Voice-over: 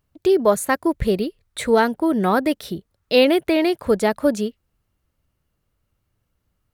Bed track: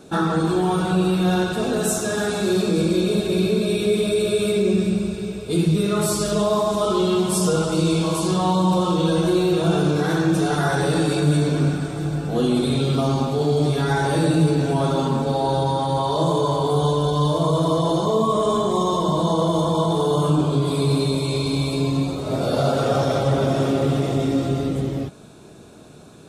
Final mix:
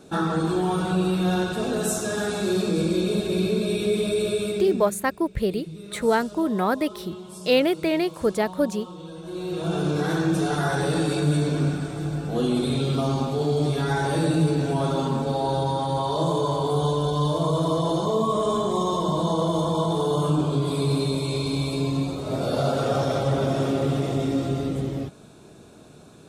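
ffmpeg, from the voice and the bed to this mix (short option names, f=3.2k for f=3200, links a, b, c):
-filter_complex "[0:a]adelay=4350,volume=-4.5dB[a];[1:a]volume=12.5dB,afade=t=out:st=4.26:d=0.71:silence=0.158489,afade=t=in:st=9.23:d=0.78:silence=0.158489[b];[a][b]amix=inputs=2:normalize=0"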